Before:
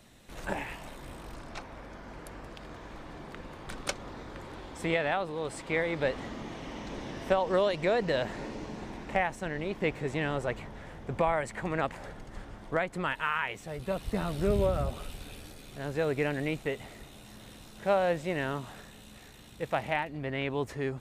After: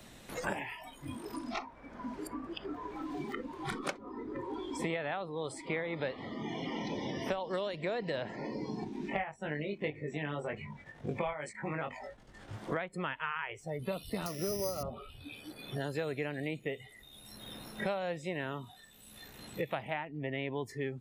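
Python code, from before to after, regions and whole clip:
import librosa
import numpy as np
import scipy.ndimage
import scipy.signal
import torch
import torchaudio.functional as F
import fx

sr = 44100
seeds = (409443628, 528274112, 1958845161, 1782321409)

y = fx.chain(x, sr, fx.high_shelf(hz=8900.0, db=-5.5),
    fx.level_steps(step_db=9),
    fx.doubler(ms=20.0, db=-3.0), at=(8.84, 12.53))
y = fx.chain(y, sr, fx.highpass(hz=190.0, slope=6),
    fx.resample_bad(factor=8, down='none', up='zero_stuff'), at=(14.26, 14.83))
y = fx.noise_reduce_blind(y, sr, reduce_db=20)
y = fx.band_squash(y, sr, depth_pct=100)
y = y * 10.0 ** (-5.5 / 20.0)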